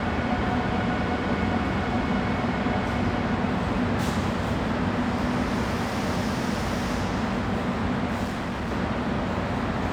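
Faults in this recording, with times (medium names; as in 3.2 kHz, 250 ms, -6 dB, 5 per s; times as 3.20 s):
8.23–8.72 s: clipped -26 dBFS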